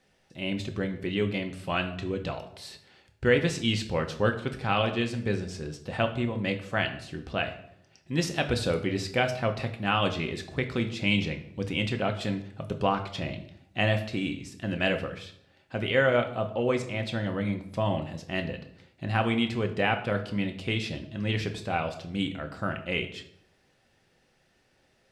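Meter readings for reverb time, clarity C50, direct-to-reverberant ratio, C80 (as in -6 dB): 0.70 s, 11.5 dB, 5.0 dB, 14.0 dB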